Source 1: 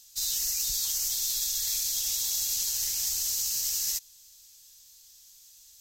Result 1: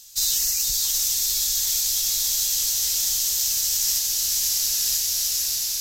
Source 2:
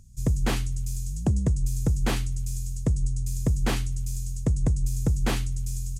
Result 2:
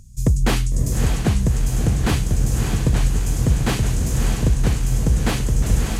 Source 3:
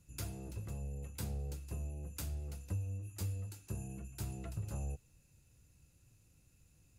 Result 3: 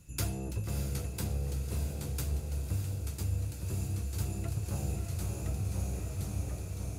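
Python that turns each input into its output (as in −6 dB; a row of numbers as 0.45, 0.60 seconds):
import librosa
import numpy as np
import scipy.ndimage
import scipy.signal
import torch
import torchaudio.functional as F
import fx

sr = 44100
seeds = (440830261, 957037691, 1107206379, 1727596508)

y = fx.echo_pitch(x, sr, ms=755, semitones=-1, count=2, db_per_echo=-6.0)
y = fx.echo_diffused(y, sr, ms=615, feedback_pct=61, wet_db=-4.5)
y = fx.rider(y, sr, range_db=5, speed_s=0.5)
y = y * librosa.db_to_amplitude(5.0)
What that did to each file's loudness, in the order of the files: +6.5, +7.5, +7.5 LU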